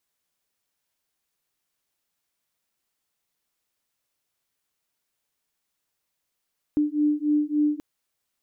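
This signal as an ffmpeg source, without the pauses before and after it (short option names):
-f lavfi -i "aevalsrc='0.0708*(sin(2*PI*296*t)+sin(2*PI*299.5*t))':d=1.03:s=44100"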